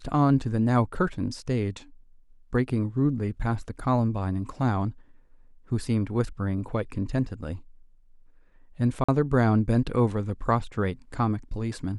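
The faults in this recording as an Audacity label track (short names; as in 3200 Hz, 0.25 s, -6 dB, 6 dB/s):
9.040000	9.090000	gap 45 ms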